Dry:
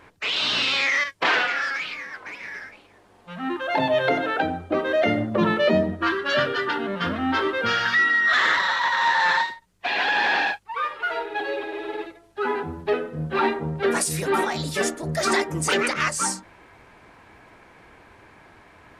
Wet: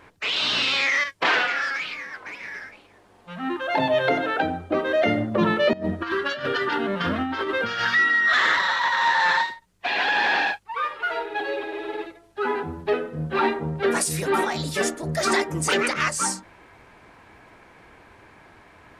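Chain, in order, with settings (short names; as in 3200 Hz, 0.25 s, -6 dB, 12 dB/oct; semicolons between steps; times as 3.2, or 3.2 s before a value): 5.73–7.85 negative-ratio compressor -25 dBFS, ratio -0.5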